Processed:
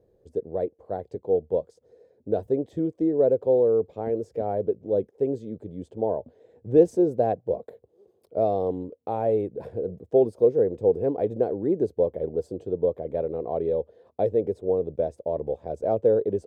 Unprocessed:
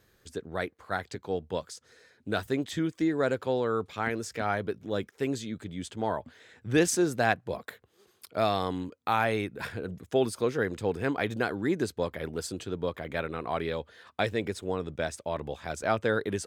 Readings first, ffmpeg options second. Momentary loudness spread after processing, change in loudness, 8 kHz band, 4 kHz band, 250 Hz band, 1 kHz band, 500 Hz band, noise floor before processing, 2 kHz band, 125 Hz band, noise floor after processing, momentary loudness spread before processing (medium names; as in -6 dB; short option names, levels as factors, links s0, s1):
12 LU, +5.0 dB, under -20 dB, under -20 dB, +2.5 dB, -1.5 dB, +8.0 dB, -67 dBFS, under -20 dB, 0.0 dB, -66 dBFS, 10 LU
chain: -af "firequalizer=gain_entry='entry(260,0);entry(480,11);entry(1300,-22)':delay=0.05:min_phase=1"